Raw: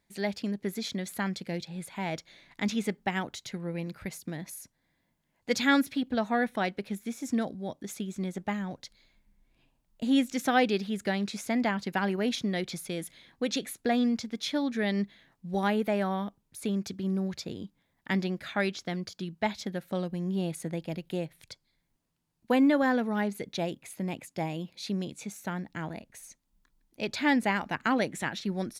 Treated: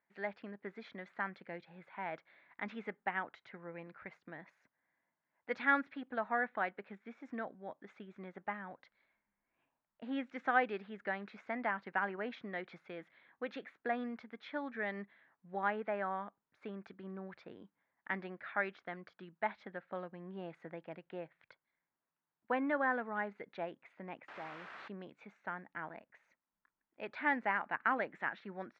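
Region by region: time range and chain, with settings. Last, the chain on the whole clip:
0:24.28–0:24.88: downward compressor 2 to 1, threshold −38 dBFS + bit-depth reduction 6 bits, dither triangular
whole clip: low-pass filter 1,600 Hz 24 dB per octave; first difference; level +13.5 dB

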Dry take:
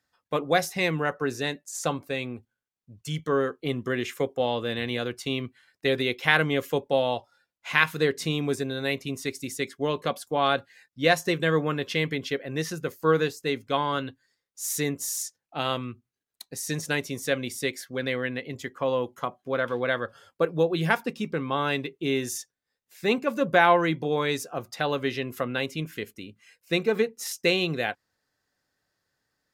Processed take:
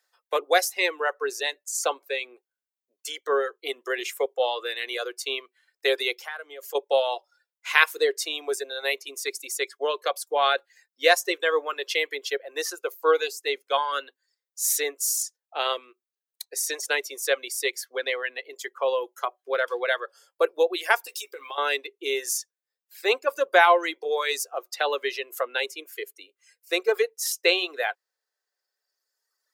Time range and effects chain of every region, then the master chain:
0:06.15–0:06.75: notch filter 1,000 Hz, Q 15 + downward compressor 2.5 to 1, threshold −39 dBFS
0:12.75–0:13.42: notch filter 1,800 Hz, Q 5.1 + hum removal 87.71 Hz, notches 3
0:21.04–0:21.58: RIAA equalisation recording + double-tracking delay 14 ms −7.5 dB + downward compressor 16 to 1, threshold −32 dBFS
0:25.69–0:26.88: parametric band 3,700 Hz −2.5 dB 2.2 octaves + notch filter 900 Hz, Q 9.3
whole clip: high-shelf EQ 5,100 Hz +6 dB; reverb reduction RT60 1.8 s; Butterworth high-pass 380 Hz 48 dB per octave; level +2.5 dB

